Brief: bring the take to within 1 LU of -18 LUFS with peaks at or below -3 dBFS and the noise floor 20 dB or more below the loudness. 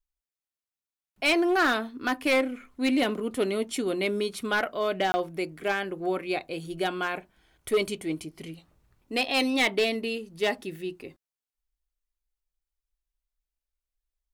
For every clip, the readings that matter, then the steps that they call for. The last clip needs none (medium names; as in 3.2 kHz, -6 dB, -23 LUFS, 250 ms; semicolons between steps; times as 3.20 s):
clipped samples 0.6%; clipping level -18.0 dBFS; dropouts 1; longest dropout 20 ms; loudness -27.5 LUFS; peak level -18.0 dBFS; loudness target -18.0 LUFS
-> clip repair -18 dBFS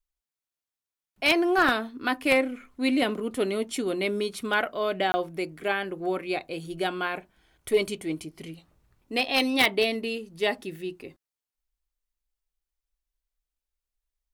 clipped samples 0.0%; dropouts 1; longest dropout 20 ms
-> interpolate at 5.12 s, 20 ms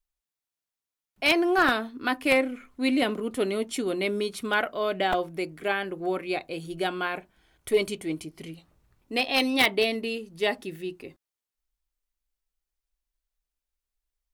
dropouts 0; loudness -26.5 LUFS; peak level -9.0 dBFS; loudness target -18.0 LUFS
-> trim +8.5 dB; peak limiter -3 dBFS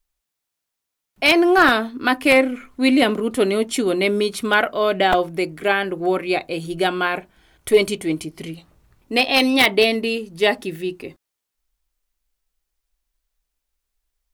loudness -18.5 LUFS; peak level -3.0 dBFS; noise floor -82 dBFS